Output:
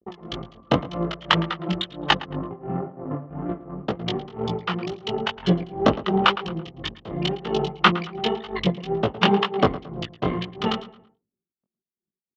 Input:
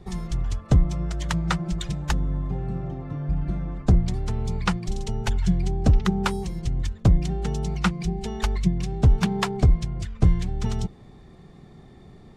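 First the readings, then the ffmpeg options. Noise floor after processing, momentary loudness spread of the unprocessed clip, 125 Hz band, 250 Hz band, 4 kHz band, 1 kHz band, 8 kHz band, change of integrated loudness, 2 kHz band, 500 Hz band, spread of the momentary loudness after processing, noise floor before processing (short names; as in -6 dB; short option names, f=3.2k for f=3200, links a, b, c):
under -85 dBFS, 8 LU, -7.0 dB, +1.0 dB, +10.5 dB, +8.5 dB, n/a, +0.5 dB, +7.5 dB, +8.0 dB, 13 LU, -48 dBFS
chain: -filter_complex "[0:a]anlmdn=6.31,agate=range=-35dB:threshold=-48dB:ratio=16:detection=peak,equalizer=f=1.6k:t=o:w=2.4:g=-7.5,aeval=exprs='0.355*(cos(1*acos(clip(val(0)/0.355,-1,1)))-cos(1*PI/2))+0.0447*(cos(4*acos(clip(val(0)/0.355,-1,1)))-cos(4*PI/2))+0.01*(cos(6*acos(clip(val(0)/0.355,-1,1)))-cos(6*PI/2))':c=same,tremolo=f=2.9:d=0.95,asoftclip=type=tanh:threshold=-15.5dB,flanger=delay=17:depth=5.1:speed=2,highpass=400,equalizer=f=1.2k:t=q:w=4:g=8,equalizer=f=1.9k:t=q:w=4:g=4,equalizer=f=3k:t=q:w=4:g=10,lowpass=f=3.9k:w=0.5412,lowpass=f=3.9k:w=1.3066,asplit=2[a][b];[b]adelay=111,lowpass=f=3k:p=1,volume=-16dB,asplit=2[c][d];[d]adelay=111,lowpass=f=3k:p=1,volume=0.39,asplit=2[e][f];[f]adelay=111,lowpass=f=3k:p=1,volume=0.39[g];[a][c][e][g]amix=inputs=4:normalize=0,alimiter=level_in=22dB:limit=-1dB:release=50:level=0:latency=1,volume=-1dB"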